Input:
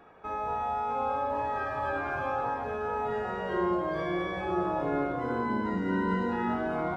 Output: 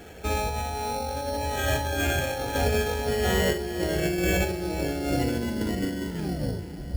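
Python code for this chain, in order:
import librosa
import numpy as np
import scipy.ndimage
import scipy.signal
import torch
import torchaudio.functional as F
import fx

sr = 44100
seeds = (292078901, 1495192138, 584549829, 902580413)

y = fx.tape_stop_end(x, sr, length_s=0.88)
y = fx.peak_eq(y, sr, hz=65.0, db=15.0, octaves=0.72)
y = fx.over_compress(y, sr, threshold_db=-33.0, ratio=-0.5)
y = fx.high_shelf(y, sr, hz=4100.0, db=6.5)
y = fx.fixed_phaser(y, sr, hz=2600.0, stages=4)
y = fx.doubler(y, sr, ms=39.0, db=-13.5)
y = fx.echo_diffused(y, sr, ms=511, feedback_pct=50, wet_db=-11.0)
y = fx.sample_hold(y, sr, seeds[0], rate_hz=4900.0, jitter_pct=0)
y = y * librosa.db_to_amplitude(9.0)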